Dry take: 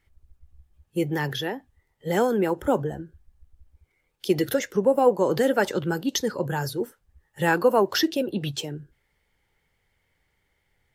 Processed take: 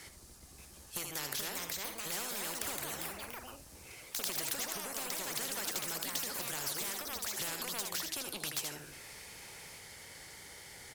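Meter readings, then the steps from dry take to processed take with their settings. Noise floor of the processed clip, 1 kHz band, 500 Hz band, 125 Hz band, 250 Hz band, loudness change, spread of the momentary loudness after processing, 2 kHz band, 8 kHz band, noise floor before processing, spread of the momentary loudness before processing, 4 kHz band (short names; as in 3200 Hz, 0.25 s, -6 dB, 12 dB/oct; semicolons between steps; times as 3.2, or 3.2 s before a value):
-55 dBFS, -16.0 dB, -24.0 dB, -20.5 dB, -23.0 dB, -12.5 dB, 14 LU, -10.5 dB, +1.5 dB, -73 dBFS, 13 LU, -5.0 dB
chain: HPF 210 Hz 6 dB/oct; band shelf 7000 Hz +11 dB; compressor 6:1, threshold -34 dBFS, peak gain reduction 20.5 dB; soft clip -26.5 dBFS, distortion -20 dB; on a send: echo 78 ms -12 dB; on the sum: echoes that change speed 0.583 s, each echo +3 st, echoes 3, each echo -6 dB; spectral compressor 4:1; gain +6 dB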